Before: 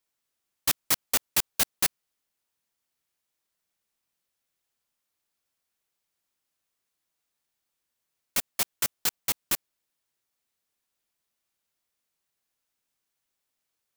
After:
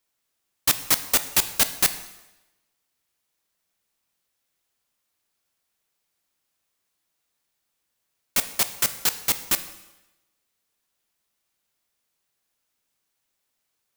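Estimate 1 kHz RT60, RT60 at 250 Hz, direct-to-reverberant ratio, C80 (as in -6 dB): 1.0 s, 0.95 s, 10.5 dB, 15.0 dB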